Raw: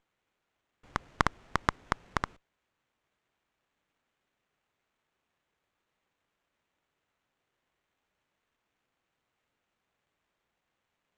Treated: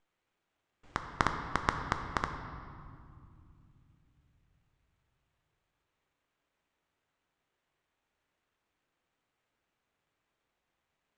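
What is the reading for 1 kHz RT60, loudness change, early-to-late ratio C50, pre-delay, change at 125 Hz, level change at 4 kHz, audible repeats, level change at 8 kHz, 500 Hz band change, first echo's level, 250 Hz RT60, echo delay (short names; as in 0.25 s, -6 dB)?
2.2 s, -1.5 dB, 6.5 dB, 3 ms, -0.5 dB, -1.5 dB, none, -2.0 dB, -1.0 dB, none, 3.9 s, none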